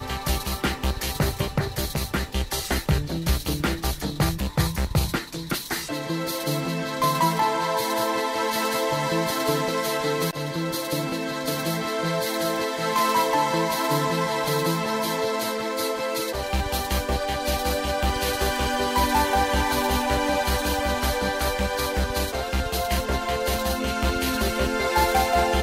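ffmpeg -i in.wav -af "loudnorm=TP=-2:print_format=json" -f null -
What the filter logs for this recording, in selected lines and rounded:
"input_i" : "-24.4",
"input_tp" : "-8.0",
"input_lra" : "3.0",
"input_thresh" : "-34.4",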